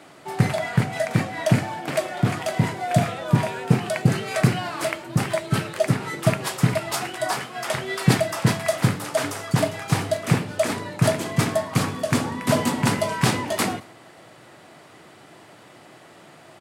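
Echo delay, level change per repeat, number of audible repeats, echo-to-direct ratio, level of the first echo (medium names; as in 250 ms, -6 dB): 110 ms, -9.5 dB, 2, -22.5 dB, -23.0 dB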